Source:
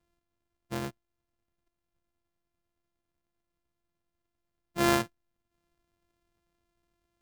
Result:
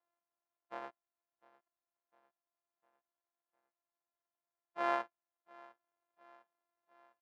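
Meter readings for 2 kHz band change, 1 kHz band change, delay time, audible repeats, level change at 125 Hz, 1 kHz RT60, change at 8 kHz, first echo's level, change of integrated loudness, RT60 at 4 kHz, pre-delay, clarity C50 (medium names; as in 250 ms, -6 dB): -9.0 dB, -4.0 dB, 703 ms, 3, under -30 dB, no reverb, under -25 dB, -23.0 dB, -10.0 dB, no reverb, no reverb, no reverb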